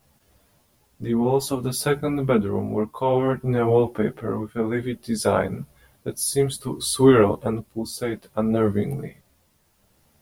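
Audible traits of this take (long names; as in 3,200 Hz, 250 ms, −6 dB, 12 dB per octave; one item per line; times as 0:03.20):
tremolo triangle 0.6 Hz, depth 55%
a quantiser's noise floor 12 bits, dither triangular
a shimmering, thickened sound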